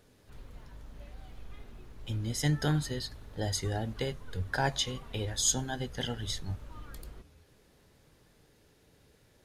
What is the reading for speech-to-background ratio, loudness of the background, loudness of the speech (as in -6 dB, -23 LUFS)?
18.0 dB, -51.0 LUFS, -33.0 LUFS